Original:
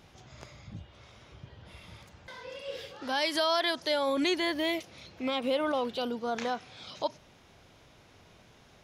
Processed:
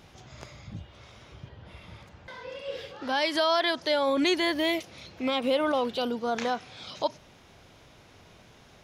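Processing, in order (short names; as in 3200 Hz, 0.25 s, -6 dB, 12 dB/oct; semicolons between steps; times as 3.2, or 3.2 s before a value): 1.48–4.25 high shelf 4100 Hz -> 8200 Hz -10 dB; gain +3.5 dB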